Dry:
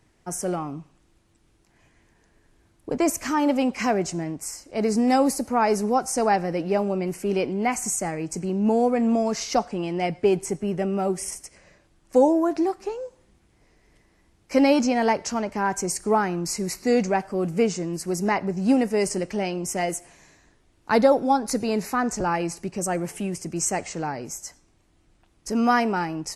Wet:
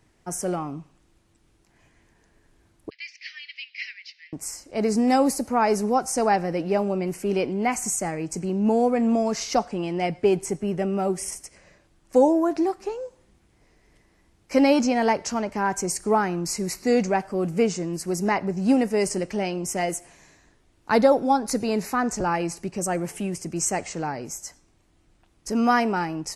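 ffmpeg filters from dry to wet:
ffmpeg -i in.wav -filter_complex "[0:a]asettb=1/sr,asplit=3[link_01][link_02][link_03];[link_01]atrim=end=2.904[link_04];[link_02]atrim=start=2.9:end=4.33,asetpts=PTS-STARTPTS,afade=type=in:duration=0.004:curve=qsin,afade=type=out:start_time=1.426:duration=0.004:curve=qsin,asuperpass=centerf=3100:order=12:qfactor=1[link_05];[link_03]atrim=start=4.326[link_06];[link_04][link_05]acrossfade=duration=0.004:curve1=hsin:curve2=qsin[link_07];[link_07][link_06]acrossfade=duration=0.004:curve1=qsin:curve2=hsin" out.wav

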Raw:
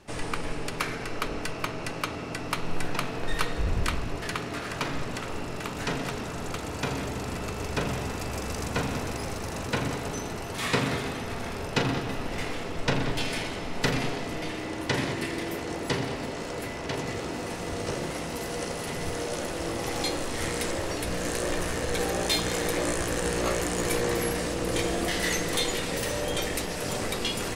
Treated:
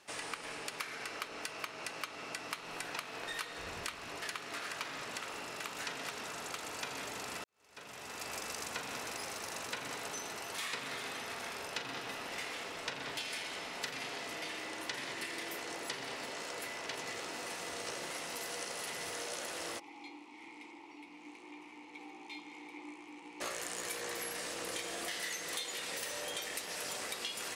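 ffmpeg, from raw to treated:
ffmpeg -i in.wav -filter_complex "[0:a]asplit=3[link_01][link_02][link_03];[link_01]afade=type=out:start_time=19.78:duration=0.02[link_04];[link_02]asplit=3[link_05][link_06][link_07];[link_05]bandpass=frequency=300:width_type=q:width=8,volume=0dB[link_08];[link_06]bandpass=frequency=870:width_type=q:width=8,volume=-6dB[link_09];[link_07]bandpass=frequency=2240:width_type=q:width=8,volume=-9dB[link_10];[link_08][link_09][link_10]amix=inputs=3:normalize=0,afade=type=in:start_time=19.78:duration=0.02,afade=type=out:start_time=23.4:duration=0.02[link_11];[link_03]afade=type=in:start_time=23.4:duration=0.02[link_12];[link_04][link_11][link_12]amix=inputs=3:normalize=0,asplit=2[link_13][link_14];[link_13]atrim=end=7.44,asetpts=PTS-STARTPTS,afade=type=out:start_time=7.436:duration=0.004:curve=hsin[link_15];[link_14]atrim=start=7.44,asetpts=PTS-STARTPTS,afade=type=in:duration=0.88:curve=qua[link_16];[link_15][link_16]concat=n=2:v=0:a=1,highpass=frequency=1300:poles=1,acompressor=threshold=-36dB:ratio=6,volume=-1dB" out.wav

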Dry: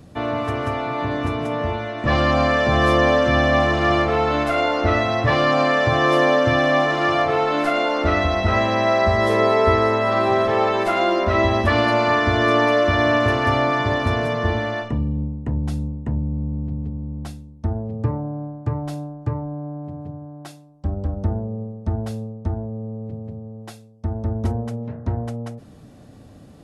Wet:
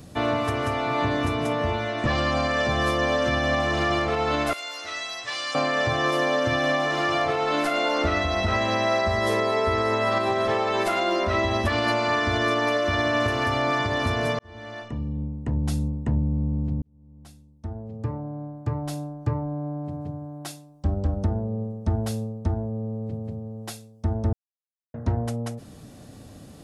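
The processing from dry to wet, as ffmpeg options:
ffmpeg -i in.wav -filter_complex "[0:a]asettb=1/sr,asplit=3[link_01][link_02][link_03];[link_01]atrim=end=4.534[link_04];[link_02]atrim=start=4.53:end=5.55,asetpts=PTS-STARTPTS,afade=type=in:duration=0.004:curve=qsin,afade=type=out:start_time=1.016:duration=0.004:curve=qsin,aderivative[link_05];[link_03]atrim=start=5.546[link_06];[link_04][link_05]acrossfade=duration=0.004:curve1=hsin:curve2=qsin[link_07];[link_07][link_06]acrossfade=duration=0.004:curve1=qsin:curve2=hsin,asplit=5[link_08][link_09][link_10][link_11][link_12];[link_08]atrim=end=14.39,asetpts=PTS-STARTPTS,afade=type=out:start_time=14.386:duration=0.004:curve=hsin[link_13];[link_09]atrim=start=14.39:end=16.82,asetpts=PTS-STARTPTS,afade=type=in:duration=1.49,afade=type=out:start_time=2.426:duration=0.004:curve=hsin[link_14];[link_10]atrim=start=16.82:end=24.33,asetpts=PTS-STARTPTS,afade=type=in:duration=2.86,afade=type=out:start_time=7.506:duration=0.004:curve=hsin[link_15];[link_11]atrim=start=24.33:end=24.94,asetpts=PTS-STARTPTS,volume=0[link_16];[link_12]atrim=start=24.94,asetpts=PTS-STARTPTS,afade=type=in:duration=0.004:curve=hsin[link_17];[link_13][link_14][link_15][link_16][link_17]concat=n=5:v=0:a=1,highshelf=frequency=3700:gain=9.5,alimiter=limit=-14dB:level=0:latency=1:release=310" out.wav

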